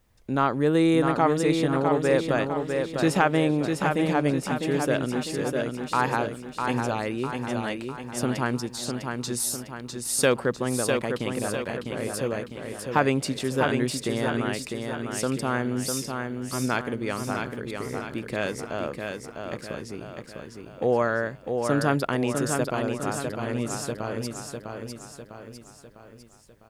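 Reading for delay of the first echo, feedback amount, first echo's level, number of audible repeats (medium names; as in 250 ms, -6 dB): 652 ms, 49%, -5.0 dB, 5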